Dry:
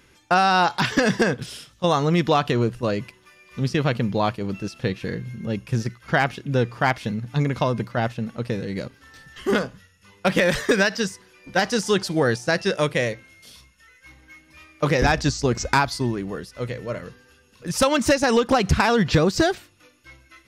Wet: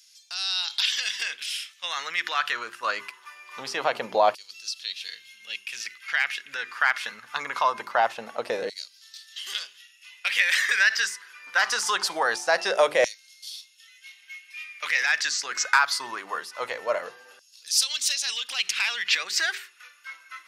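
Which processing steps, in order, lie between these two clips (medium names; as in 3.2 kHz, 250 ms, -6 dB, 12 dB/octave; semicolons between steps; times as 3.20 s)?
hum notches 50/100/150/200/250/300/350/400 Hz; peak limiter -16.5 dBFS, peak gain reduction 9 dB; LFO high-pass saw down 0.23 Hz 610–5100 Hz; trim +3.5 dB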